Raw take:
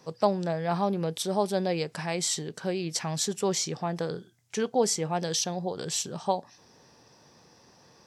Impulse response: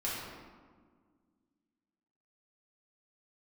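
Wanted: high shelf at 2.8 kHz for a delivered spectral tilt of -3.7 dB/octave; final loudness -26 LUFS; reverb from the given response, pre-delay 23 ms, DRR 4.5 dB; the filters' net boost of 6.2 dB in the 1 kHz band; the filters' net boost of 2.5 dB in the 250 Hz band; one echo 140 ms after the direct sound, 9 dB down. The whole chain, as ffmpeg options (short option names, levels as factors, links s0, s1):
-filter_complex "[0:a]equalizer=f=250:t=o:g=3.5,equalizer=f=1000:t=o:g=7.5,highshelf=f=2800:g=4.5,aecho=1:1:140:0.355,asplit=2[s0][s1];[1:a]atrim=start_sample=2205,adelay=23[s2];[s1][s2]afir=irnorm=-1:irlink=0,volume=0.335[s3];[s0][s3]amix=inputs=2:normalize=0,volume=0.794"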